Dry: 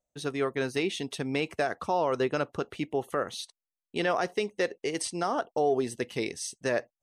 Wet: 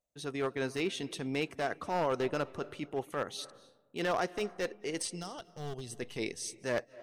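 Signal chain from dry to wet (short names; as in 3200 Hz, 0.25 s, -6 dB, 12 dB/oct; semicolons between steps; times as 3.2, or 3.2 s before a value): one-sided fold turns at -23 dBFS; spectral gain 5.15–5.92, 200–2700 Hz -13 dB; transient shaper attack -6 dB, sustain -2 dB; on a send: reverb RT60 1.2 s, pre-delay 0.194 s, DRR 19.5 dB; on the sum: gain -2.5 dB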